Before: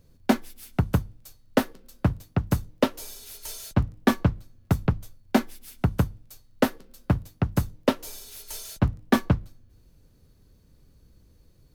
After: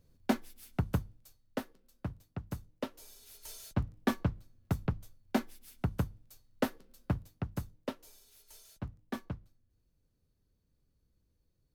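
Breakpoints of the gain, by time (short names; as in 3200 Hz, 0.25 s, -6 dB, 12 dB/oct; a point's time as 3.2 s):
1.03 s -8.5 dB
1.63 s -16 dB
2.87 s -16 dB
3.56 s -9.5 dB
7.12 s -9.5 dB
8.14 s -18.5 dB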